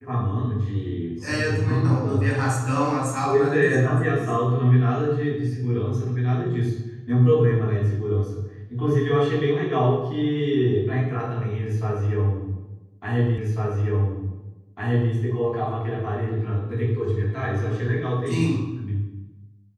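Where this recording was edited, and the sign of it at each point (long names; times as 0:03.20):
0:13.38: the same again, the last 1.75 s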